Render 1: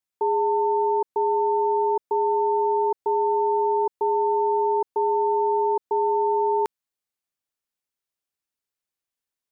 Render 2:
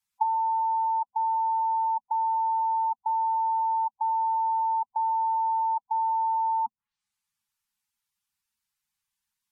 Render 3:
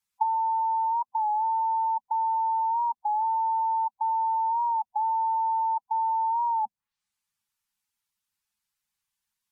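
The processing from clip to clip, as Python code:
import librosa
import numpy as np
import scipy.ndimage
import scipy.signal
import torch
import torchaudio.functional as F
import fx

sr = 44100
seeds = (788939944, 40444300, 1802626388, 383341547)

y1 = fx.env_lowpass_down(x, sr, base_hz=630.0, full_db=-24.0)
y1 = scipy.signal.sosfilt(scipy.signal.ellip(3, 1.0, 40, [230.0, 820.0], 'bandstop', fs=sr, output='sos'), y1)
y1 = fx.spec_gate(y1, sr, threshold_db=-10, keep='strong')
y1 = y1 * librosa.db_to_amplitude(6.5)
y2 = fx.record_warp(y1, sr, rpm=33.33, depth_cents=100.0)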